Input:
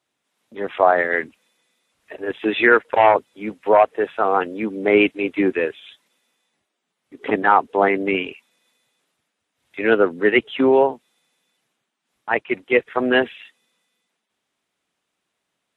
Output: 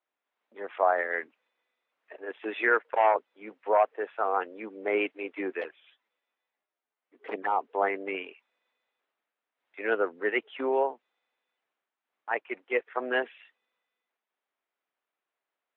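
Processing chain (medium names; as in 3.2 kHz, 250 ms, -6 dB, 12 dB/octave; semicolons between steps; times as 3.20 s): 5.61–7.61 s: touch-sensitive flanger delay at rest 11.8 ms, full sweep at -15 dBFS; band-pass 470–2200 Hz; trim -8 dB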